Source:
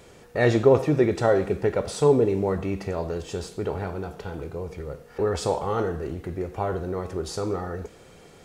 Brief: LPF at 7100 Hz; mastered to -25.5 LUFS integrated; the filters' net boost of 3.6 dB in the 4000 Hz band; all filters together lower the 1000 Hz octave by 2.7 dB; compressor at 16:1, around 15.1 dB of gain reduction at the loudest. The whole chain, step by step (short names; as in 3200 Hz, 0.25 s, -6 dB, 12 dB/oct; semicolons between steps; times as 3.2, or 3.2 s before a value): LPF 7100 Hz; bell 1000 Hz -4 dB; bell 4000 Hz +5 dB; compressor 16:1, threshold -27 dBFS; gain +8 dB